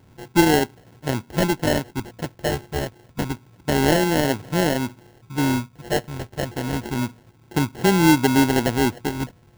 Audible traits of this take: a buzz of ramps at a fixed pitch in blocks of 16 samples; phasing stages 12, 0.28 Hz, lowest notch 330–2200 Hz; aliases and images of a low sample rate 1.2 kHz, jitter 0%

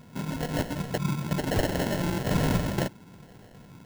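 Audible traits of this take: phasing stages 2, 1.1 Hz, lowest notch 450–1700 Hz; aliases and images of a low sample rate 1.2 kHz, jitter 0%

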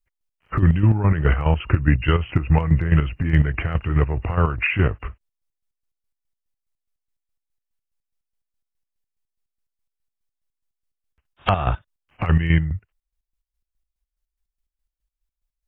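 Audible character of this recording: chopped level 4.8 Hz, depth 60%, duty 40%

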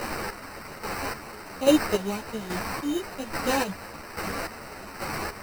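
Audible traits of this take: a quantiser's noise floor 6-bit, dither triangular; chopped level 1.2 Hz, depth 65%, duty 35%; aliases and images of a low sample rate 3.4 kHz, jitter 0%; a shimmering, thickened sound

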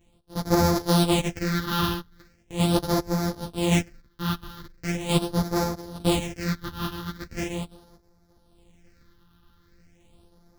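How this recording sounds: a buzz of ramps at a fixed pitch in blocks of 256 samples; phasing stages 6, 0.4 Hz, lowest notch 580–2800 Hz; random-step tremolo; a shimmering, thickened sound

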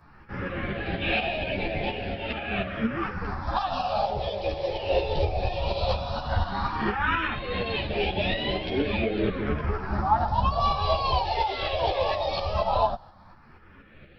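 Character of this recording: phasing stages 4, 0.15 Hz, lowest notch 220–1200 Hz; tremolo saw up 4.2 Hz, depth 50%; a shimmering, thickened sound

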